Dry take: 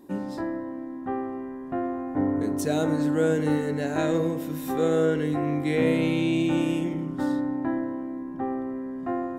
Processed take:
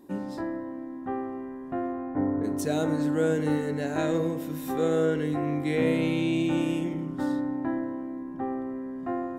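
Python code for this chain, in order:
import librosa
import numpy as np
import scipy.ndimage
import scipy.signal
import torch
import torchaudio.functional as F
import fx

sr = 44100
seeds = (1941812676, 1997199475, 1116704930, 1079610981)

y = fx.lowpass(x, sr, hz=fx.line((1.92, 4200.0), (2.43, 1600.0)), slope=12, at=(1.92, 2.43), fade=0.02)
y = F.gain(torch.from_numpy(y), -2.0).numpy()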